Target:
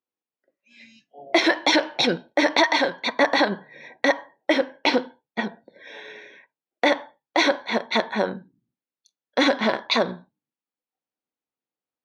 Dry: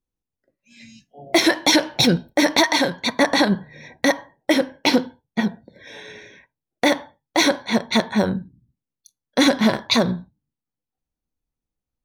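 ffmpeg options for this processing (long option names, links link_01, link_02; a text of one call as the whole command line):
ffmpeg -i in.wav -af "highpass=360,lowpass=3600" out.wav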